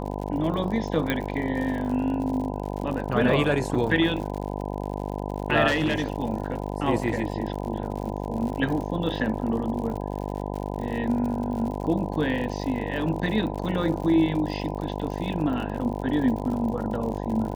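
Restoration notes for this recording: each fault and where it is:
buzz 50 Hz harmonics 20 -31 dBFS
crackle 79/s -33 dBFS
1.1 pop -12 dBFS
5.67–6.1 clipped -19 dBFS

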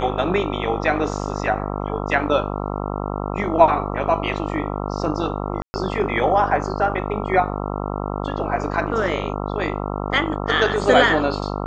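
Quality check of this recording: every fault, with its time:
buzz 50 Hz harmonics 27 -26 dBFS
5.62–5.74 gap 0.12 s

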